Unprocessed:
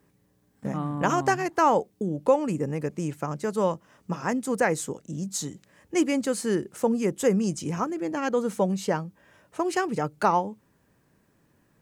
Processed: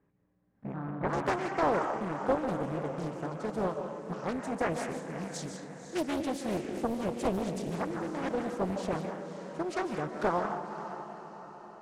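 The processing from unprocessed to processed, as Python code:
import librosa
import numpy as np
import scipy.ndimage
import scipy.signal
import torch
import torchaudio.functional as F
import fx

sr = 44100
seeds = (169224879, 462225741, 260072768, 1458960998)

y = fx.lowpass(x, sr, hz=fx.steps((0.0, 1900.0), (1.13, 6800.0)), slope=12)
y = fx.echo_diffused(y, sr, ms=546, feedback_pct=51, wet_db=-10)
y = fx.rev_freeverb(y, sr, rt60_s=0.89, hf_ratio=0.6, predelay_ms=110, drr_db=5.0)
y = fx.doppler_dist(y, sr, depth_ms=0.89)
y = F.gain(torch.from_numpy(y), -8.0).numpy()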